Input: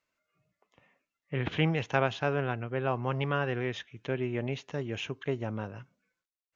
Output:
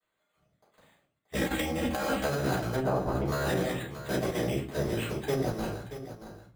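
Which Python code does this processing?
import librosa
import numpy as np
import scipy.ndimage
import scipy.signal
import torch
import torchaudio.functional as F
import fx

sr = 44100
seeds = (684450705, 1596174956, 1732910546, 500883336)

y = fx.cycle_switch(x, sr, every=2, mode='muted')
y = np.repeat(scipy.signal.resample_poly(y, 1, 8), 8)[:len(y)]
y = fx.comb(y, sr, ms=3.7, depth=0.99, at=(1.34, 2.23))
y = fx.lowpass(y, sr, hz=1100.0, slope=12, at=(2.75, 3.27))
y = fx.room_shoebox(y, sr, seeds[0], volume_m3=230.0, walls='furnished', distance_m=6.3)
y = fx.over_compress(y, sr, threshold_db=-21.0, ratio=-1.0)
y = fx.highpass(y, sr, hz=140.0, slope=6)
y = y + 10.0 ** (-12.0 / 20.0) * np.pad(y, (int(629 * sr / 1000.0), 0))[:len(y)]
y = y * librosa.db_to_amplitude(-5.5)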